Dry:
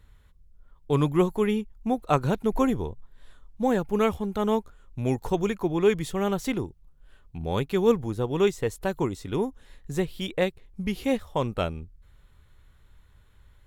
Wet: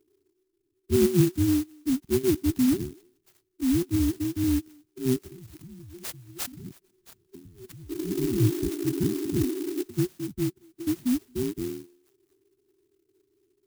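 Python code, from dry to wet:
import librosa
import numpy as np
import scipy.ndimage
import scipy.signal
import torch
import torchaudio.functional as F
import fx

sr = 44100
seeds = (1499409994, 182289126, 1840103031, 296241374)

y = fx.band_invert(x, sr, width_hz=500)
y = scipy.signal.sosfilt(scipy.signal.butter(2, 85.0, 'highpass', fs=sr, output='sos'), y)
y = fx.env_lowpass(y, sr, base_hz=1200.0, full_db=-22.5)
y = fx.bass_treble(y, sr, bass_db=-6, treble_db=4)
y = fx.over_compress(y, sr, threshold_db=-40.0, ratio=-1.0, at=(5.28, 7.97))
y = fx.env_phaser(y, sr, low_hz=180.0, high_hz=2400.0, full_db=-22.0)
y = fx.spec_paint(y, sr, seeds[0], shape='noise', start_s=7.89, length_s=1.95, low_hz=270.0, high_hz=1400.0, level_db=-27.0)
y = fx.brickwall_bandstop(y, sr, low_hz=400.0, high_hz=5600.0)
y = fx.echo_stepped(y, sr, ms=224, hz=750.0, octaves=1.4, feedback_pct=70, wet_db=-10.0)
y = fx.clock_jitter(y, sr, seeds[1], jitter_ms=0.097)
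y = y * librosa.db_to_amplitude(6.0)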